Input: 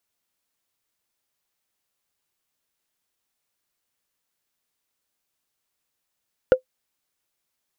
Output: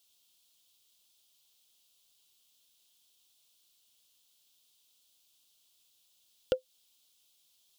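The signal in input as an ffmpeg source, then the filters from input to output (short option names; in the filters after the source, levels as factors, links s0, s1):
-f lavfi -i "aevalsrc='0.562*pow(10,-3*t/0.1)*sin(2*PI*514*t)+0.15*pow(10,-3*t/0.03)*sin(2*PI*1417.1*t)+0.0398*pow(10,-3*t/0.013)*sin(2*PI*2777.7*t)+0.0106*pow(10,-3*t/0.007)*sin(2*PI*4591.6*t)+0.00282*pow(10,-3*t/0.004)*sin(2*PI*6856.8*t)':d=0.45:s=44100"
-af "highshelf=f=2500:t=q:w=3:g=9.5,alimiter=limit=0.168:level=0:latency=1:release=233"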